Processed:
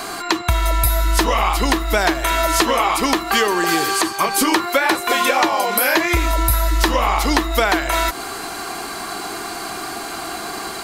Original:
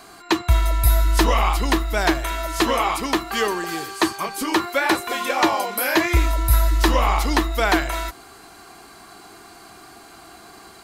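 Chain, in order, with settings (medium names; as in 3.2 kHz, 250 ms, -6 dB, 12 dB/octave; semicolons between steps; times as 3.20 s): peaking EQ 77 Hz -7 dB 2.3 oct; compression 10:1, threshold -30 dBFS, peak gain reduction 17 dB; loudness maximiser +17.5 dB; trim -1 dB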